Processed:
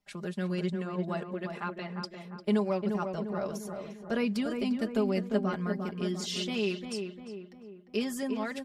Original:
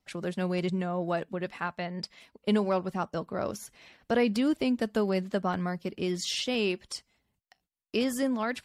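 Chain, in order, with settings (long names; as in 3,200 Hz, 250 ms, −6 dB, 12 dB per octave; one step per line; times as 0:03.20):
comb filter 4.9 ms, depth 69%
feedback echo with a low-pass in the loop 350 ms, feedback 52%, low-pass 1,700 Hz, level −5.5 dB
level −5.5 dB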